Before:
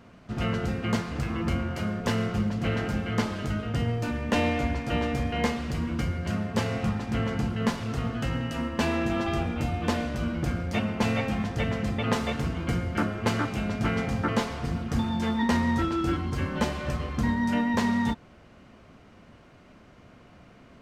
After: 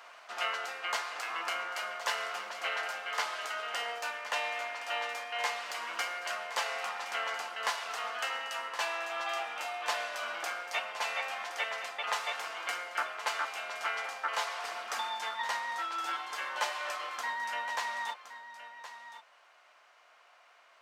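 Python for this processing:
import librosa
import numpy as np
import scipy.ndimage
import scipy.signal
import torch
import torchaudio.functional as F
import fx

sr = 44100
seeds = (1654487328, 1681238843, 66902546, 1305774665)

y = scipy.signal.sosfilt(scipy.signal.butter(4, 740.0, 'highpass', fs=sr, output='sos'), x)
y = fx.rider(y, sr, range_db=10, speed_s=0.5)
y = y + 10.0 ** (-12.5 / 20.0) * np.pad(y, (int(1068 * sr / 1000.0), 0))[:len(y)]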